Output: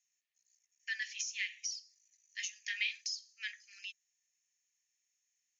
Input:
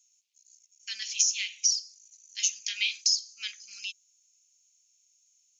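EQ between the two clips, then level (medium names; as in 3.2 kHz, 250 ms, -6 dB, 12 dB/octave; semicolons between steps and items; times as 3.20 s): band-pass filter 1.8 kHz, Q 15; tilt EQ +3 dB/octave; +10.5 dB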